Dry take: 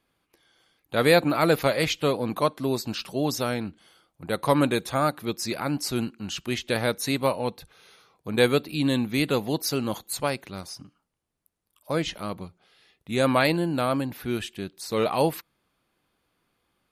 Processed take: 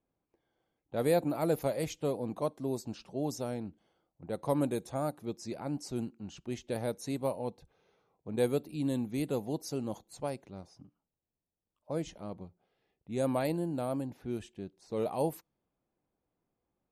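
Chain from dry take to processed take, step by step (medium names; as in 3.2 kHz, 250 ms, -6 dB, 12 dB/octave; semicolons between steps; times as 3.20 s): level-controlled noise filter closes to 2.5 kHz, open at -19.5 dBFS; high-order bell 2.3 kHz -11 dB 2.4 oct; trim -8 dB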